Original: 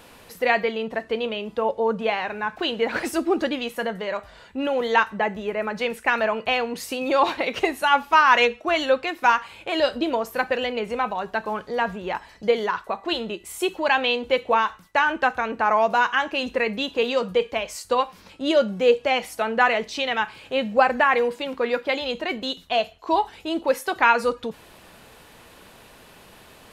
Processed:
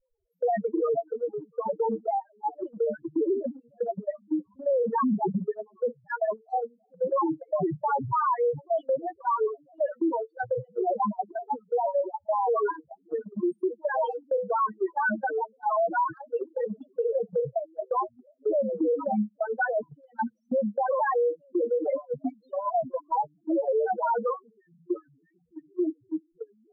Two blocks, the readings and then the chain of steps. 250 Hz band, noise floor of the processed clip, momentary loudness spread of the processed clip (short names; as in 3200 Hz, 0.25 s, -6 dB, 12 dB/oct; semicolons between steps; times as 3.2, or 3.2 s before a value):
-2.0 dB, -69 dBFS, 8 LU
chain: notches 50/100/150/200/250/300/350/400/450/500 Hz; requantised 8-bit, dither none; echoes that change speed 93 ms, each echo -7 st, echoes 2, each echo -6 dB; flange 0.43 Hz, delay 1.6 ms, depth 6.6 ms, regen +50%; bell 300 Hz -3 dB 0.37 oct; dark delay 0.305 s, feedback 67%, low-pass 480 Hz, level -20 dB; loudest bins only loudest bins 2; tilt -1.5 dB/oct; gate -32 dBFS, range -26 dB; Chebyshev band-stop 1400–4400 Hz, order 2; limiter -26.5 dBFS, peak gain reduction 14 dB; gain +7 dB